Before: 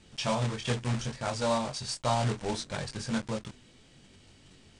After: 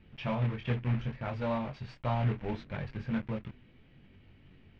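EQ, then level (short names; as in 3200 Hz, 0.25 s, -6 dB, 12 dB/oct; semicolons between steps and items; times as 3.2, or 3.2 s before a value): ladder low-pass 2900 Hz, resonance 40%; low shelf 340 Hz +10.5 dB; 0.0 dB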